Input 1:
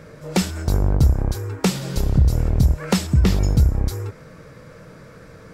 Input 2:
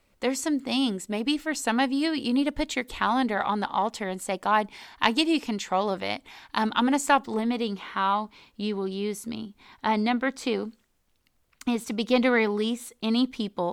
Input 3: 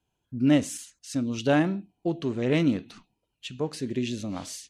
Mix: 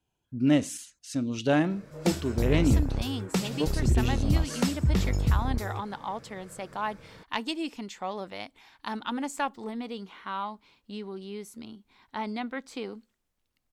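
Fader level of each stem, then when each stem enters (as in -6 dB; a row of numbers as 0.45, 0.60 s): -8.5, -9.0, -1.5 dB; 1.70, 2.30, 0.00 s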